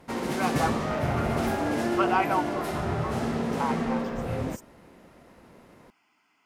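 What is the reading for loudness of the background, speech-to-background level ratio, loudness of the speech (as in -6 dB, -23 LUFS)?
-28.5 LUFS, -4.0 dB, -32.5 LUFS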